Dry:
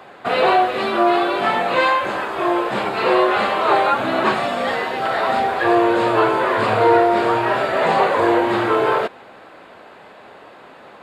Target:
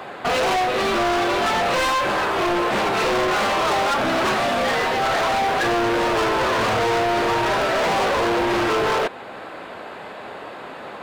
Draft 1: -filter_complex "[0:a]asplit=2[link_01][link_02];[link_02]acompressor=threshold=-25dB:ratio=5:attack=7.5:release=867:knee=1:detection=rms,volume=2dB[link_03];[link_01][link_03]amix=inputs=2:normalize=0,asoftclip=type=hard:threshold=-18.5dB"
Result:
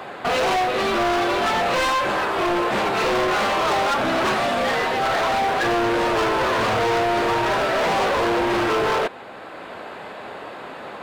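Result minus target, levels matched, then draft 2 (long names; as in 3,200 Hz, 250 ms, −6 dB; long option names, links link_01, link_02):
downward compressor: peak gain reduction +5.5 dB
-filter_complex "[0:a]asplit=2[link_01][link_02];[link_02]acompressor=threshold=-18dB:ratio=5:attack=7.5:release=867:knee=1:detection=rms,volume=2dB[link_03];[link_01][link_03]amix=inputs=2:normalize=0,asoftclip=type=hard:threshold=-18.5dB"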